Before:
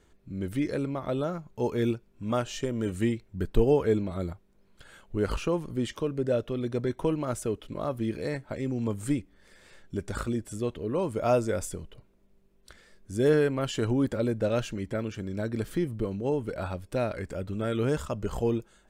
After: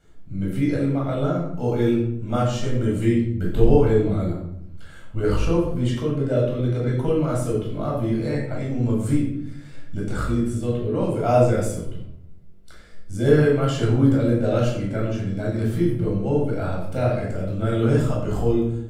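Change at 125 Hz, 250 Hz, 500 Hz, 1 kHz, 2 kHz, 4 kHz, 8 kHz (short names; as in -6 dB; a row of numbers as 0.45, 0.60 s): +11.0, +7.5, +6.0, +6.5, +5.0, +3.5, +2.5 dB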